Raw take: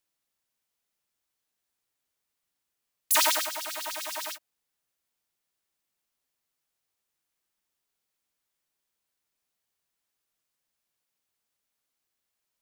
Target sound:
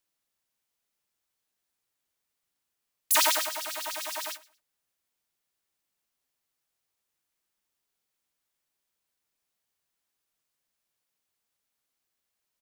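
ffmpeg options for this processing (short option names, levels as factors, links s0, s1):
-af "aecho=1:1:114|228:0.0891|0.0241"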